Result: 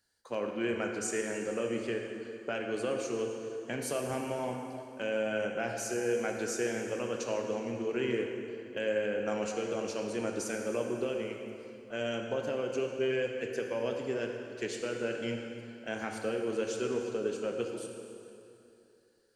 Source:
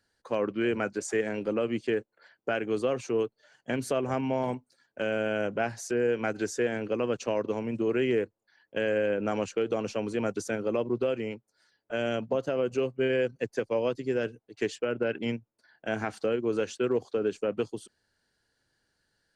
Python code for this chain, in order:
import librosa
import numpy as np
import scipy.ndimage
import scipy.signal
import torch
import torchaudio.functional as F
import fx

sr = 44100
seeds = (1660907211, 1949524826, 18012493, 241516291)

y = fx.high_shelf(x, sr, hz=4700.0, db=11.5)
y = fx.rev_plate(y, sr, seeds[0], rt60_s=2.8, hf_ratio=0.8, predelay_ms=0, drr_db=1.5)
y = y * 10.0 ** (-7.0 / 20.0)